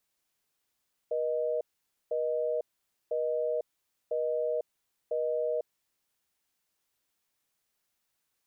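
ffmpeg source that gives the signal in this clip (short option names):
-f lavfi -i "aevalsrc='0.0316*(sin(2*PI*480*t)+sin(2*PI*620*t))*clip(min(mod(t,1),0.5-mod(t,1))/0.005,0,1)':d=4.74:s=44100"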